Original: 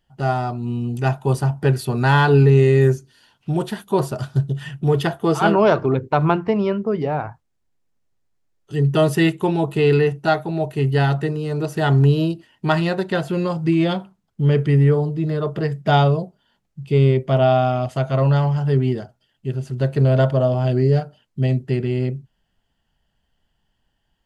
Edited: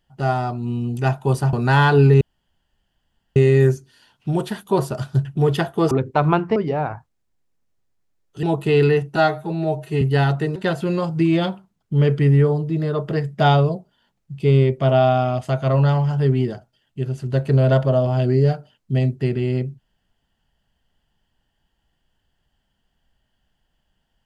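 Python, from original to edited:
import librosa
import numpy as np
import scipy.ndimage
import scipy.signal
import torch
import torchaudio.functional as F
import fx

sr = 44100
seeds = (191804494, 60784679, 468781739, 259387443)

y = fx.edit(x, sr, fx.cut(start_s=1.53, length_s=0.36),
    fx.insert_room_tone(at_s=2.57, length_s=1.15),
    fx.cut(start_s=4.46, length_s=0.25),
    fx.cut(start_s=5.37, length_s=0.51),
    fx.cut(start_s=6.53, length_s=0.37),
    fx.cut(start_s=8.77, length_s=0.76),
    fx.stretch_span(start_s=10.26, length_s=0.57, factor=1.5),
    fx.cut(start_s=11.37, length_s=1.66), tone=tone)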